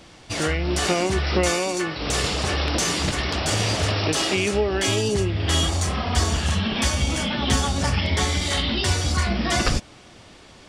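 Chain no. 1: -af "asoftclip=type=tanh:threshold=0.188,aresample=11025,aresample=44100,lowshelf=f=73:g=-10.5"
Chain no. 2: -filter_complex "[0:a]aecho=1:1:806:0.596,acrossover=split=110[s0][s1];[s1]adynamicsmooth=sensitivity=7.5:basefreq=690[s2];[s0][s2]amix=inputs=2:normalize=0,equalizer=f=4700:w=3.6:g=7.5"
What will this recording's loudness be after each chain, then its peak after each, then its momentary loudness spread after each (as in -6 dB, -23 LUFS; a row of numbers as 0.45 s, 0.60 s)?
-25.0 LUFS, -20.5 LUFS; -13.5 dBFS, -6.0 dBFS; 3 LU, 4 LU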